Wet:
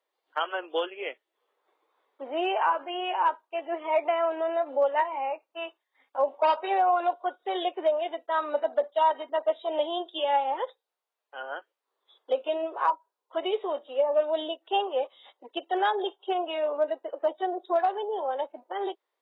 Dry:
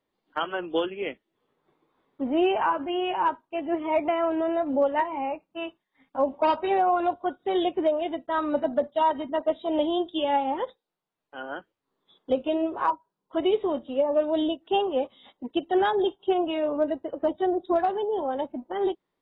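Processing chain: HPF 460 Hz 24 dB/oct

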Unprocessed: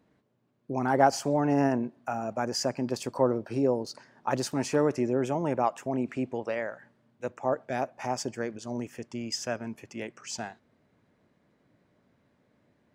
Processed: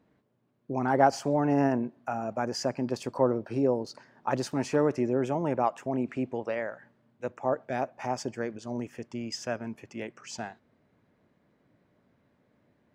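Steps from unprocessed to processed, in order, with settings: high shelf 5500 Hz -8.5 dB

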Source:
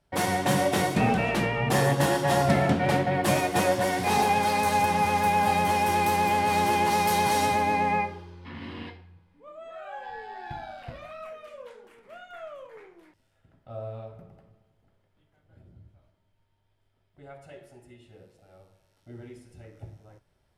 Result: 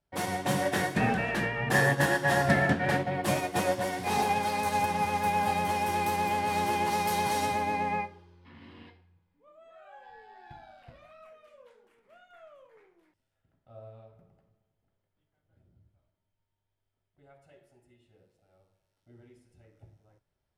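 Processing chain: 0.62–2.98 bell 1700 Hz +13 dB 0.24 oct; upward expander 1.5:1, over -37 dBFS; gain -2 dB

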